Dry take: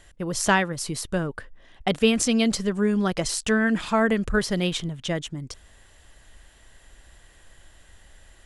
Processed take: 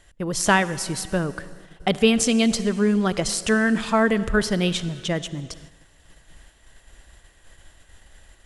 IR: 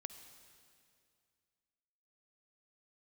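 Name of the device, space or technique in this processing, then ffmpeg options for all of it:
keyed gated reverb: -filter_complex "[0:a]asplit=3[a][b][c];[1:a]atrim=start_sample=2205[d];[b][d]afir=irnorm=-1:irlink=0[e];[c]apad=whole_len=372963[f];[e][f]sidechaingate=range=-15dB:threshold=-49dB:ratio=16:detection=peak,volume=4.5dB[g];[a][g]amix=inputs=2:normalize=0,volume=-4dB"

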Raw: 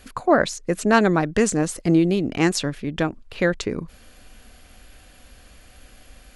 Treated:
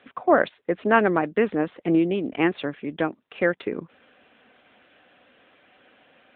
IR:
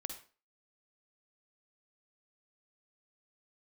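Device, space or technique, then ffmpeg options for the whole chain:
telephone: -af "highpass=270,lowpass=3.5k" -ar 8000 -c:a libopencore_amrnb -b:a 10200

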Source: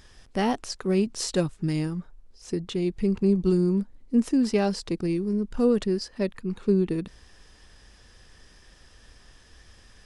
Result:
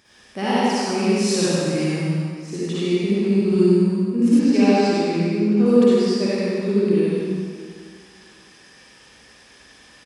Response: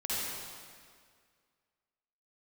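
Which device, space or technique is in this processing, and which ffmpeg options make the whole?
PA in a hall: -filter_complex "[0:a]highpass=160,equalizer=f=2.4k:t=o:w=0.22:g=7,aecho=1:1:96:0.631[a];[1:a]atrim=start_sample=2205[b];[a][b]afir=irnorm=-1:irlink=0,asettb=1/sr,asplit=3[c][d][e];[c]atrim=end=4.394[f];[d]atrim=start=4.39:end=5.66,asetpts=PTS-STARTPTS,afade=t=in:d=0.004:c=qsin,afade=t=out:st=1.266:d=0.004:c=qsin,lowpass=6.4k[g];[e]atrim=start=5.656[h];[f][g]acrossfade=d=0.004:c1=hsin:c2=qsin[i];[i][h]acrossfade=d=0.004:c1=qsin:c2=hsin"

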